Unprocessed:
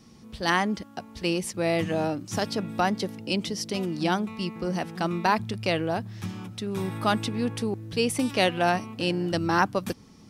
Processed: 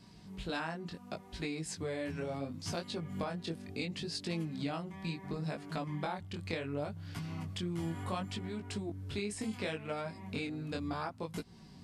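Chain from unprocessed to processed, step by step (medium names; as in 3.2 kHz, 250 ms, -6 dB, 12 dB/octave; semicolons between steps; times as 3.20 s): compression 6:1, threshold -32 dBFS, peak gain reduction 14.5 dB; tape speed -13%; chorus 0.7 Hz, delay 17.5 ms, depth 6.9 ms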